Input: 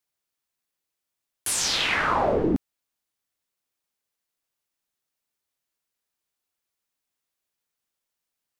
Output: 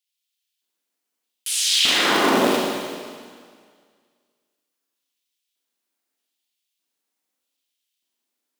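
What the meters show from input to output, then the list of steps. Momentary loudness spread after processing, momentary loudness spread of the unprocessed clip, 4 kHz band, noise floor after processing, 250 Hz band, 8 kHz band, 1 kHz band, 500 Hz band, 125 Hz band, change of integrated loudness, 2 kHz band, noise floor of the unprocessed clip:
17 LU, 7 LU, +9.0 dB, −81 dBFS, +4.5 dB, +4.5 dB, +3.5 dB, +4.0 dB, −3.5 dB, +5.5 dB, +4.5 dB, −85 dBFS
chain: sub-harmonics by changed cycles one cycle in 2, inverted
auto-filter high-pass square 0.81 Hz 270–3,100 Hz
four-comb reverb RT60 1.9 s, combs from 33 ms, DRR −3 dB
level −1.5 dB

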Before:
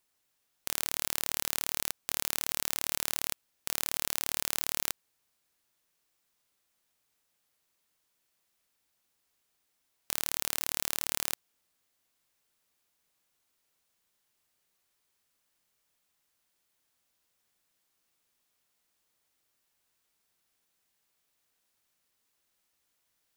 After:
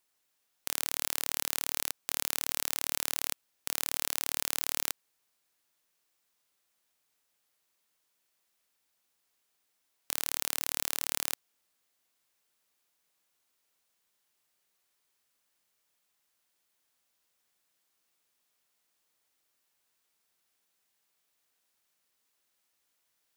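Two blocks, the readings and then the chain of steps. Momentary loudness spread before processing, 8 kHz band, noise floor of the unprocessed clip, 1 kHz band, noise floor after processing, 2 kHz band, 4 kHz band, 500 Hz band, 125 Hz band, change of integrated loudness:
5 LU, 0.0 dB, −78 dBFS, −0.5 dB, −78 dBFS, 0.0 dB, 0.0 dB, −1.0 dB, −5.0 dB, 0.0 dB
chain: low-shelf EQ 190 Hz −7.5 dB

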